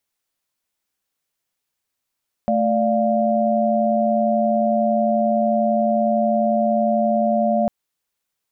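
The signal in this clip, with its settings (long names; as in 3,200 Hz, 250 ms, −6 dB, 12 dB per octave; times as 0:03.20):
held notes A3/D5/F5 sine, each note −20 dBFS 5.20 s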